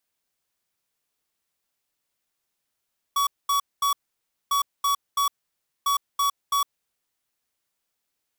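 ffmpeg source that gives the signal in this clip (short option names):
-f lavfi -i "aevalsrc='0.0794*(2*lt(mod(1130*t,1),0.5)-1)*clip(min(mod(mod(t,1.35),0.33),0.11-mod(mod(t,1.35),0.33))/0.005,0,1)*lt(mod(t,1.35),0.99)':d=4.05:s=44100"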